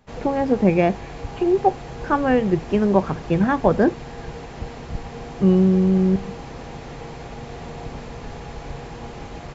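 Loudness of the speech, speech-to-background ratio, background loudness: −19.5 LKFS, 16.0 dB, −35.5 LKFS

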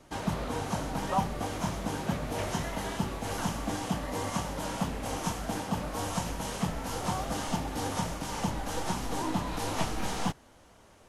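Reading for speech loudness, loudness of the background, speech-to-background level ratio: −37.5 LKFS, −33.5 LKFS, −4.0 dB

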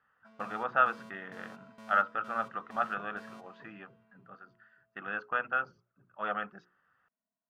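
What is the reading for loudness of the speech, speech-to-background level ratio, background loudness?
−33.0 LKFS, 19.5 dB, −52.5 LKFS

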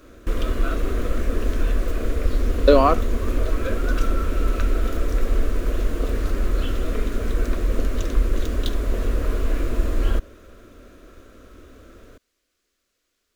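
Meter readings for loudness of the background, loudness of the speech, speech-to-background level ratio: −26.0 LKFS, −19.0 LKFS, 7.0 dB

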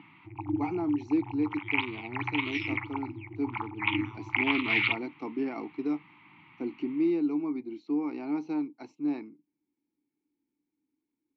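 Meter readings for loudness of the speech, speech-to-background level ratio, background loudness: −33.5 LKFS, −2.0 dB, −31.5 LKFS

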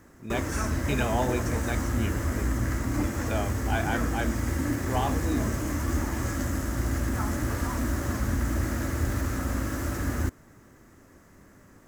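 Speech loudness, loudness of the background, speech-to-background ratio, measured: −33.5 LKFS, −29.5 LKFS, −4.0 dB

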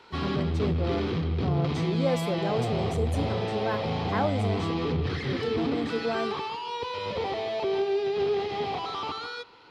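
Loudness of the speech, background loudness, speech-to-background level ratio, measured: −33.0 LKFS, −29.5 LKFS, −3.5 dB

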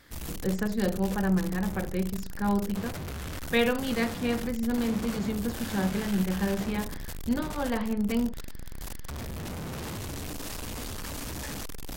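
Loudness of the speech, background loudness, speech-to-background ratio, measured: −30.0 LKFS, −38.5 LKFS, 8.5 dB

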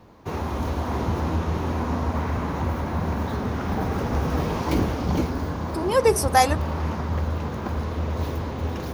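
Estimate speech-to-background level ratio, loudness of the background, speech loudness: 6.0 dB, −27.0 LKFS, −21.0 LKFS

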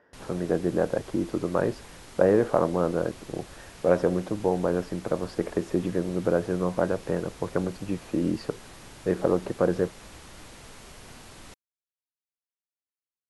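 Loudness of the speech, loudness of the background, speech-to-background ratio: −27.5 LKFS, −46.5 LKFS, 19.0 dB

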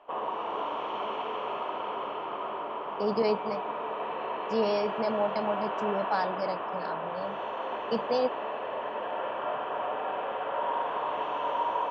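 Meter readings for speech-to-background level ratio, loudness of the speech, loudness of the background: 2.0 dB, −31.5 LKFS, −33.5 LKFS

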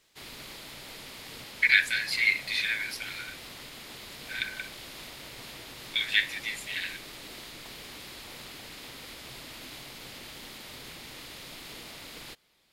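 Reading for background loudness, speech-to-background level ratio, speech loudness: −42.5 LKFS, 15.5 dB, −27.0 LKFS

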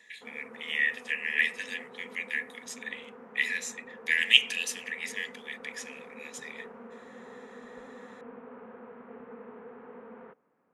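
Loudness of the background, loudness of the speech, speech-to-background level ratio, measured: −48.5 LKFS, −29.0 LKFS, 19.5 dB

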